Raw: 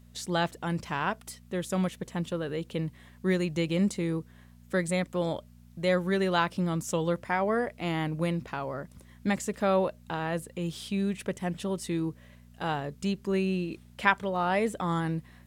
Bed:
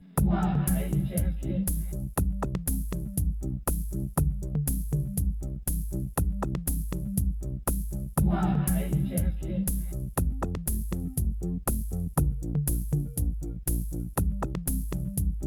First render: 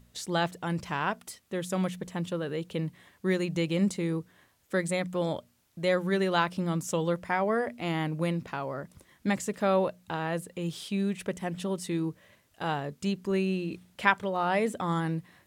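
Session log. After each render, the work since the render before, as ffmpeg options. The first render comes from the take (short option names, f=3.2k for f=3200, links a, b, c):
-af "bandreject=f=60:t=h:w=4,bandreject=f=120:t=h:w=4,bandreject=f=180:t=h:w=4,bandreject=f=240:t=h:w=4"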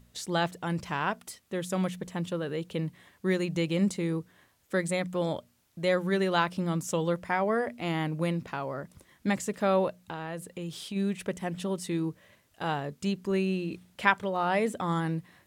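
-filter_complex "[0:a]asplit=3[a][b][c];[a]afade=t=out:st=9.96:d=0.02[d];[b]acompressor=threshold=-33dB:ratio=4:attack=3.2:release=140:knee=1:detection=peak,afade=t=in:st=9.96:d=0.02,afade=t=out:st=10.95:d=0.02[e];[c]afade=t=in:st=10.95:d=0.02[f];[d][e][f]amix=inputs=3:normalize=0"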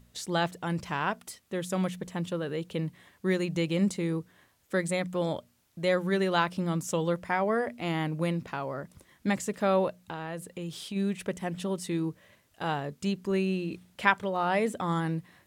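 -af anull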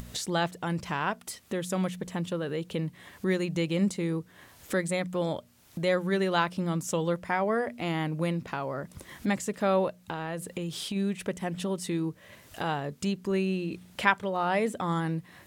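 -af "acompressor=mode=upward:threshold=-28dB:ratio=2.5"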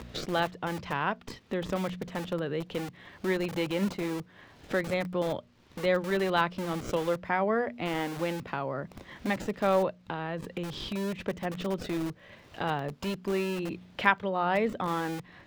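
-filter_complex "[0:a]acrossover=split=170|5100[a][b][c];[a]aeval=exprs='(mod(75*val(0)+1,2)-1)/75':c=same[d];[c]acrusher=samples=42:mix=1:aa=0.000001:lfo=1:lforange=42:lforate=0.21[e];[d][b][e]amix=inputs=3:normalize=0"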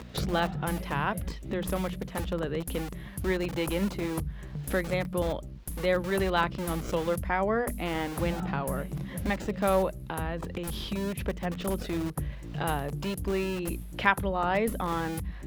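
-filter_complex "[1:a]volume=-8.5dB[a];[0:a][a]amix=inputs=2:normalize=0"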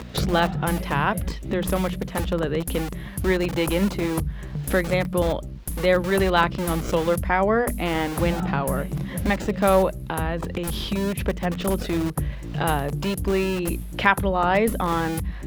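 -af "volume=7dB,alimiter=limit=-2dB:level=0:latency=1"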